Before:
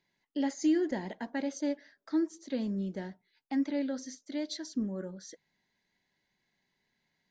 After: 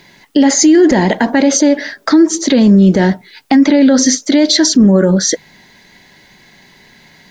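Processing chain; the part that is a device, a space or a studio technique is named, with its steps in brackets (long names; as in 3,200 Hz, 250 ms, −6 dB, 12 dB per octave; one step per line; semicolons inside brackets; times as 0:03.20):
loud club master (downward compressor 3 to 1, threshold −30 dBFS, peak gain reduction 6 dB; hard clipping −24.5 dBFS, distortion −41 dB; boost into a limiter +35.5 dB)
level −1 dB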